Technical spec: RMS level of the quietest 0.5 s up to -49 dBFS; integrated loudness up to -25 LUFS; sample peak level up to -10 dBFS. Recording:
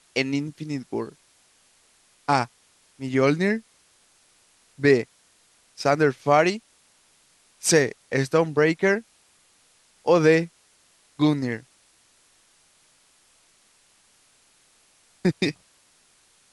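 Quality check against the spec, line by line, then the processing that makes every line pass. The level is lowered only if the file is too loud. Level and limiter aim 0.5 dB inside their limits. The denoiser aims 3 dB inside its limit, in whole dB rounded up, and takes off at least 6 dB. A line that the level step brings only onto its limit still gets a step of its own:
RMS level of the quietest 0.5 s -61 dBFS: pass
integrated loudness -23.0 LUFS: fail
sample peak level -4.0 dBFS: fail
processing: trim -2.5 dB; peak limiter -10.5 dBFS

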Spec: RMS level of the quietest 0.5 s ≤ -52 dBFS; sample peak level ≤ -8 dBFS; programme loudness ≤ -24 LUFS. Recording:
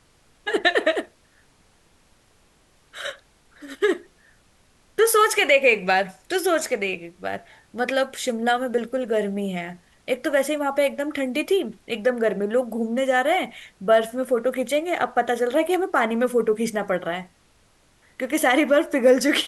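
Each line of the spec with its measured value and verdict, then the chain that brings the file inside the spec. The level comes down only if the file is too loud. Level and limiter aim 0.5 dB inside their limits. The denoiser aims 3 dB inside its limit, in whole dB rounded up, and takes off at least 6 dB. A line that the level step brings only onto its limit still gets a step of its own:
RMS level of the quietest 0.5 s -59 dBFS: pass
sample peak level -6.0 dBFS: fail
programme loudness -22.5 LUFS: fail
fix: trim -2 dB; peak limiter -8.5 dBFS

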